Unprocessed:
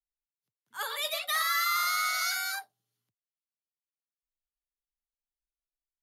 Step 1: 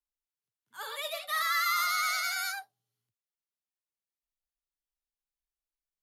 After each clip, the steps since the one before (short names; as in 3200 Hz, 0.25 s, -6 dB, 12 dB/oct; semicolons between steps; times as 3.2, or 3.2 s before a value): harmonic-percussive split percussive -10 dB; vibrato 9.9 Hz 40 cents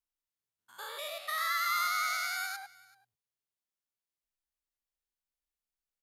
stepped spectrum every 0.1 s; echo 0.383 s -23 dB